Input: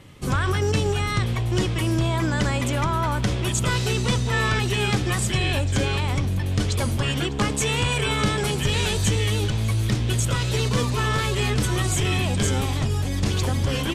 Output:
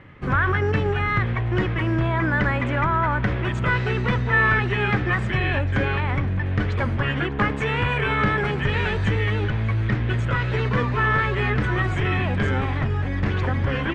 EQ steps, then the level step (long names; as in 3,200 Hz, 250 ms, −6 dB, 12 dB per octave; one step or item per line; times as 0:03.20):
low-pass with resonance 1,800 Hz, resonance Q 2.4
0.0 dB